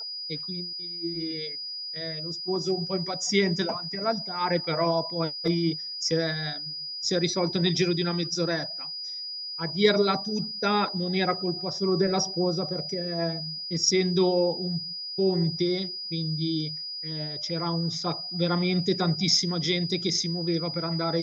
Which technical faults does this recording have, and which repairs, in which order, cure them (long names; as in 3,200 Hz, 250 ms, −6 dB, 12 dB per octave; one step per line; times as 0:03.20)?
whistle 4,900 Hz −33 dBFS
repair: notch filter 4,900 Hz, Q 30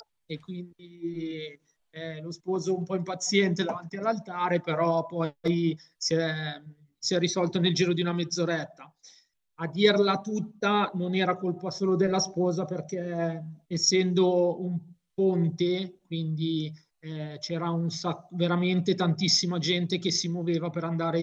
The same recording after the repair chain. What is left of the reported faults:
none of them is left